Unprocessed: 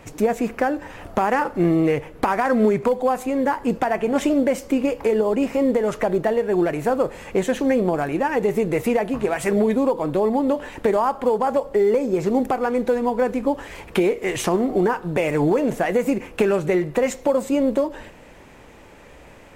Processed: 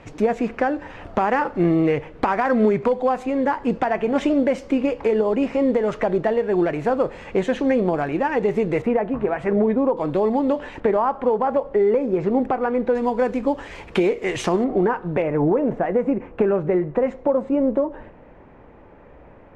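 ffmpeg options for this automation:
-af "asetnsamples=n=441:p=0,asendcmd='8.82 lowpass f 1700;9.97 lowpass f 4500;10.8 lowpass f 2300;12.95 lowpass f 5800;14.64 lowpass f 2200;15.22 lowpass f 1300',lowpass=4200"

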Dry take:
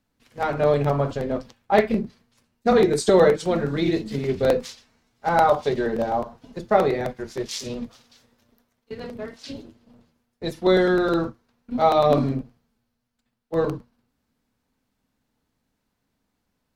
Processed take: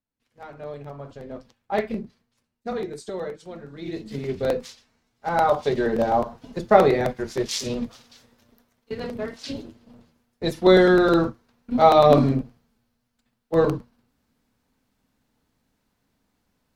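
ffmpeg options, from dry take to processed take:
-af "volume=4.73,afade=t=in:st=0.97:d=0.89:silence=0.298538,afade=t=out:st=1.86:d=1.23:silence=0.316228,afade=t=in:st=3.77:d=0.4:silence=0.251189,afade=t=in:st=5.29:d=0.9:silence=0.421697"

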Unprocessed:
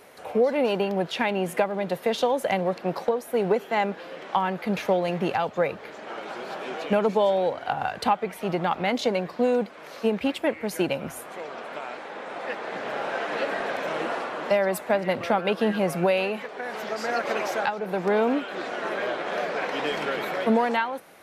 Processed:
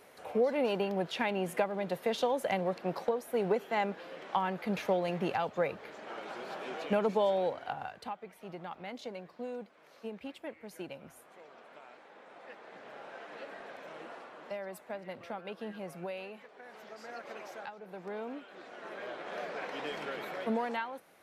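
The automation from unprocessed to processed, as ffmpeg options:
-af "afade=t=out:st=7.45:d=0.56:silence=0.281838,afade=t=in:st=18.66:d=0.77:silence=0.446684"

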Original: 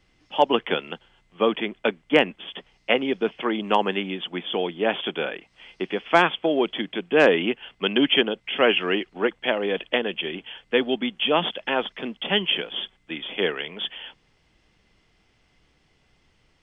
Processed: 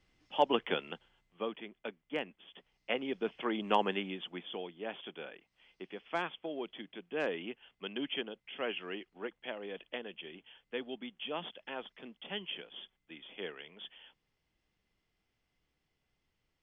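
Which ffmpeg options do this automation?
-af "volume=1.26,afade=t=out:st=0.9:d=0.65:silence=0.316228,afade=t=in:st=2.49:d=1.29:silence=0.281838,afade=t=out:st=3.78:d=0.93:silence=0.316228"

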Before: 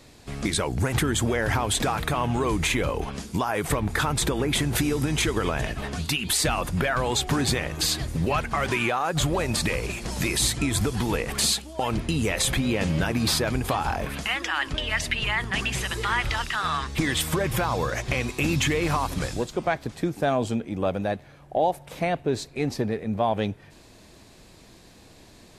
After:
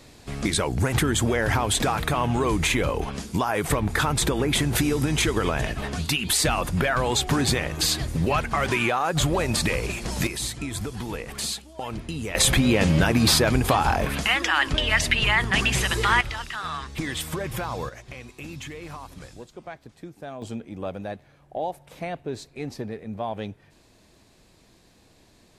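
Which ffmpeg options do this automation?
-af "asetnsamples=n=441:p=0,asendcmd='10.27 volume volume -6.5dB;12.35 volume volume 5dB;16.21 volume volume -5dB;17.89 volume volume -14dB;20.42 volume volume -6.5dB',volume=1.19"

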